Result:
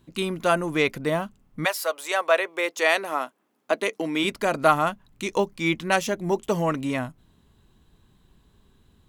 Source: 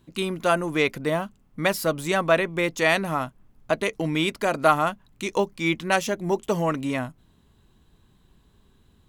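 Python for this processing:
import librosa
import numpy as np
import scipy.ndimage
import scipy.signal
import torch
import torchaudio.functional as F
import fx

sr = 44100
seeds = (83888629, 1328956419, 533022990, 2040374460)

y = fx.highpass(x, sr, hz=fx.line((1.64, 600.0), (4.23, 210.0)), slope=24, at=(1.64, 4.23), fade=0.02)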